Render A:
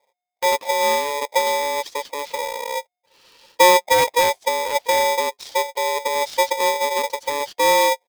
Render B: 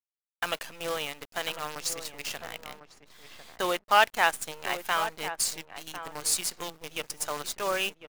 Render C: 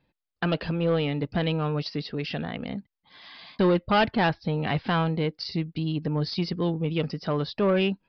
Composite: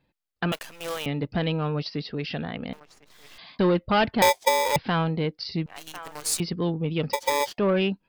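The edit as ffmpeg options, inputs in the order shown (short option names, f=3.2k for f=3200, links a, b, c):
-filter_complex "[1:a]asplit=3[a][b][c];[0:a]asplit=2[d][e];[2:a]asplit=6[f][g][h][i][j][k];[f]atrim=end=0.522[l];[a]atrim=start=0.518:end=1.062[m];[g]atrim=start=1.058:end=2.732[n];[b]atrim=start=2.728:end=3.382[o];[h]atrim=start=3.378:end=4.222[p];[d]atrim=start=4.218:end=4.762[q];[i]atrim=start=4.758:end=5.662[r];[c]atrim=start=5.658:end=6.402[s];[j]atrim=start=6.398:end=7.132[t];[e]atrim=start=7.128:end=7.582[u];[k]atrim=start=7.578[v];[l][m]acrossfade=d=0.004:c1=hsin:c2=hsin[w];[w][n]acrossfade=d=0.004:c1=hsin:c2=hsin[x];[x][o]acrossfade=d=0.004:c1=hsin:c2=hsin[y];[y][p]acrossfade=d=0.004:c1=hsin:c2=hsin[z];[z][q]acrossfade=d=0.004:c1=hsin:c2=hsin[aa];[aa][r]acrossfade=d=0.004:c1=hsin:c2=hsin[ab];[ab][s]acrossfade=d=0.004:c1=hsin:c2=hsin[ac];[ac][t]acrossfade=d=0.004:c1=hsin:c2=hsin[ad];[ad][u]acrossfade=d=0.004:c1=hsin:c2=hsin[ae];[ae][v]acrossfade=d=0.004:c1=hsin:c2=hsin"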